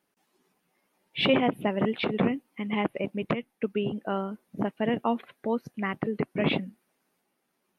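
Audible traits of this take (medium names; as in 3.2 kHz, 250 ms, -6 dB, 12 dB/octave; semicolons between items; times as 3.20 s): noise floor -77 dBFS; spectral tilt -4.0 dB/octave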